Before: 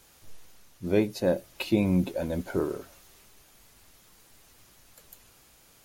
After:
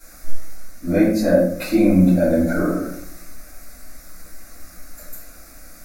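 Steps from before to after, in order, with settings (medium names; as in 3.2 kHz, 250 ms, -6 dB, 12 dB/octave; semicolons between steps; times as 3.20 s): in parallel at -1 dB: compression, threshold -37 dBFS, peak gain reduction 17.5 dB; on the sum: static phaser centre 620 Hz, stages 8; simulated room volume 100 m³, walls mixed, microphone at 3.2 m; trim -1 dB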